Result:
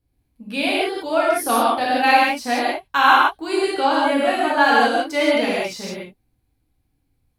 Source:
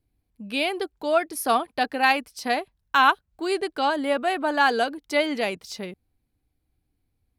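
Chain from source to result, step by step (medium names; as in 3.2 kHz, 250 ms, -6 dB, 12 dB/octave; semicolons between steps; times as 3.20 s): vibrato 11 Hz 6.3 cents; gated-style reverb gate 210 ms flat, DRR -7 dB; trim -2 dB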